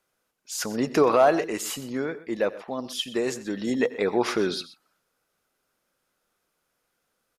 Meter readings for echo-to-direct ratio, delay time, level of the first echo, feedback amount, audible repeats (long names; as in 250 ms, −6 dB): −15.5 dB, 89 ms, −19.5 dB, repeats not evenly spaced, 2